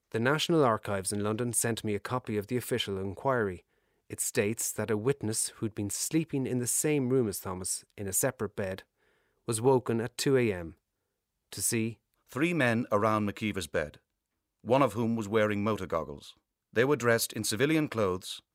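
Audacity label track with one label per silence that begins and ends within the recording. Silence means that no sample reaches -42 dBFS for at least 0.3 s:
3.570000	4.100000	silence
8.800000	9.480000	silence
10.710000	11.520000	silence
11.930000	12.320000	silence
13.940000	14.650000	silence
16.300000	16.760000	silence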